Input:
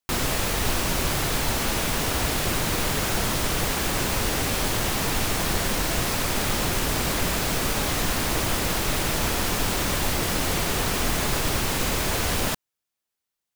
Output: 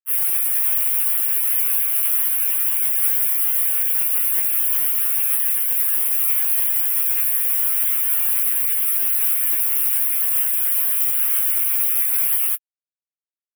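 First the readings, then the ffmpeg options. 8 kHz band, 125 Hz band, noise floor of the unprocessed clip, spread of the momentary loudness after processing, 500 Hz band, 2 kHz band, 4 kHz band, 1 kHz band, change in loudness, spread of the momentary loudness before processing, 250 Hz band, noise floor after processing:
+4.0 dB, below −30 dB, −85 dBFS, 1 LU, below −20 dB, −7.5 dB, −12.0 dB, below −10 dB, +8.5 dB, 0 LU, below −30 dB, below −85 dBFS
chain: -filter_complex "[0:a]asplit=2[link_01][link_02];[link_02]aecho=0:1:46|236:0.112|0.282[link_03];[link_01][link_03]amix=inputs=2:normalize=0,flanger=delay=7.3:depth=7.8:regen=-55:speed=0.89:shape=triangular,highpass=1200,highshelf=frequency=2200:gain=-6.5,acrusher=bits=4:mix=0:aa=0.5,highshelf=frequency=7600:gain=7,crystalizer=i=9:c=0,asuperstop=centerf=5500:order=8:qfactor=0.84,alimiter=limit=-4.5dB:level=0:latency=1:release=12,afftfilt=real='re*2.45*eq(mod(b,6),0)':imag='im*2.45*eq(mod(b,6),0)':win_size=2048:overlap=0.75,volume=2.5dB"

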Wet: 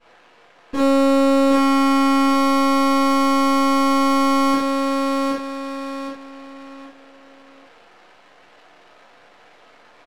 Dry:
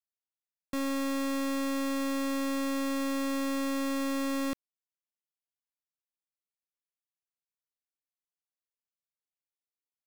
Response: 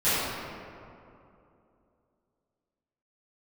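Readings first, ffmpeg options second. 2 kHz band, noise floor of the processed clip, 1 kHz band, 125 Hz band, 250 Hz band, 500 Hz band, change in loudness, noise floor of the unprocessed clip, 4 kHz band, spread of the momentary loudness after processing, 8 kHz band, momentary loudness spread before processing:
+12.0 dB, −51 dBFS, +21.0 dB, can't be measured, +14.0 dB, +16.0 dB, +14.0 dB, below −85 dBFS, +13.5 dB, 13 LU, +8.5 dB, 2 LU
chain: -filter_complex "[0:a]aeval=exprs='val(0)+0.5*0.00126*sgn(val(0))':channel_layout=same,bass=frequency=250:gain=2,treble=frequency=4000:gain=9,aeval=exprs='max(val(0),0)':channel_layout=same,aecho=1:1:772|1544|2316|3088:0.501|0.145|0.0421|0.0122,asplit=2[link_01][link_02];[link_02]highpass=frequency=720:poles=1,volume=24dB,asoftclip=type=tanh:threshold=-18.5dB[link_03];[link_01][link_03]amix=inputs=2:normalize=0,lowpass=frequency=3600:poles=1,volume=-6dB,equalizer=frequency=520:width_type=o:width=0.66:gain=5.5[link_04];[1:a]atrim=start_sample=2205,afade=type=out:start_time=0.2:duration=0.01,atrim=end_sample=9261,asetrate=70560,aresample=44100[link_05];[link_04][link_05]afir=irnorm=-1:irlink=0,adynamicsmooth=sensitivity=6:basefreq=1500"

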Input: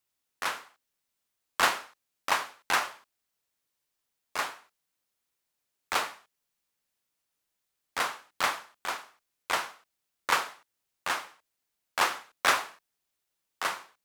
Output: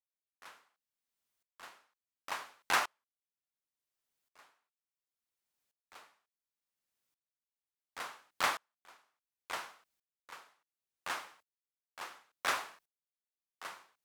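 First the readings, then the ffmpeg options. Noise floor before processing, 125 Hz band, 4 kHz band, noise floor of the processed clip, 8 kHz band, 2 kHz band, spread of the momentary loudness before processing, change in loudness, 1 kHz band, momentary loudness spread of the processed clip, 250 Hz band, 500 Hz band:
−83 dBFS, −9.5 dB, −10.0 dB, below −85 dBFS, −9.5 dB, −9.5 dB, 13 LU, −7.0 dB, −9.5 dB, 22 LU, −10.0 dB, −10.0 dB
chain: -af "aeval=exprs='val(0)*pow(10,-32*if(lt(mod(-0.7*n/s,1),2*abs(-0.7)/1000),1-mod(-0.7*n/s,1)/(2*abs(-0.7)/1000),(mod(-0.7*n/s,1)-2*abs(-0.7)/1000)/(1-2*abs(-0.7)/1000))/20)':channel_layout=same,volume=-1dB"

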